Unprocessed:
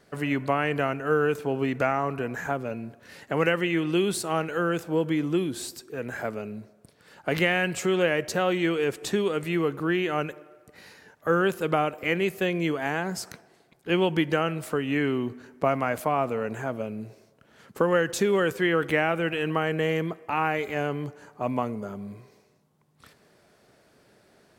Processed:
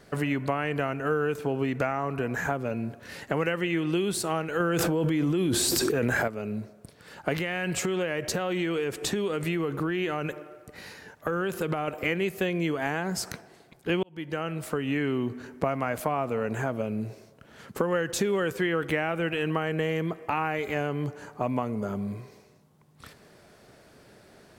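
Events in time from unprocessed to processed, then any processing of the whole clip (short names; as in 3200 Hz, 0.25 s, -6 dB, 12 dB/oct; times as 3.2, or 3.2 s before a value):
4.6–6.28 fast leveller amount 100%
7.34–11.88 compressor 4:1, threshold -26 dBFS
14.03–15.21 fade in
whole clip: low shelf 91 Hz +6.5 dB; compressor 3:1, threshold -31 dBFS; gain +5 dB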